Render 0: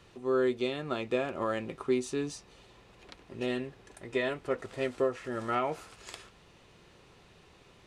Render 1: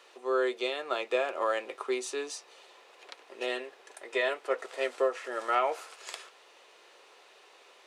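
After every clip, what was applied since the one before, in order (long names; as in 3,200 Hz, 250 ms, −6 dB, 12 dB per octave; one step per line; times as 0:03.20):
high-pass filter 450 Hz 24 dB per octave
level +4 dB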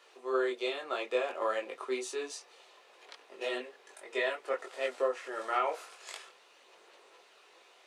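multi-voice chorus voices 6, 1.2 Hz, delay 21 ms, depth 3 ms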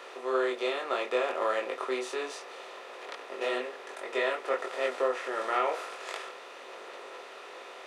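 compressor on every frequency bin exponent 0.6
parametric band 7,900 Hz −6 dB 1.1 octaves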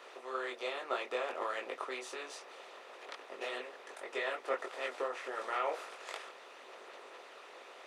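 harmonic and percussive parts rebalanced harmonic −12 dB
level −2.5 dB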